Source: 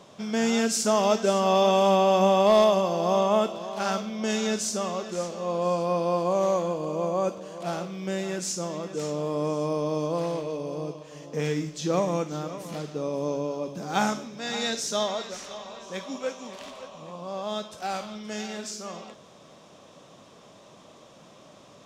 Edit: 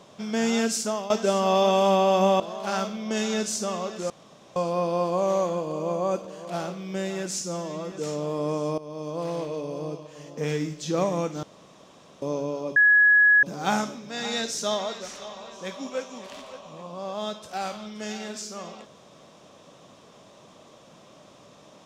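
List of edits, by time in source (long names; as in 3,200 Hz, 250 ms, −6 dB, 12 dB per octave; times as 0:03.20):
0:00.69–0:01.10: fade out, to −16 dB
0:02.40–0:03.53: remove
0:05.23–0:05.69: fill with room tone
0:08.54–0:08.88: time-stretch 1.5×
0:09.74–0:10.38: fade in, from −16.5 dB
0:12.39–0:13.18: fill with room tone
0:13.72: insert tone 1,680 Hz −13.5 dBFS 0.67 s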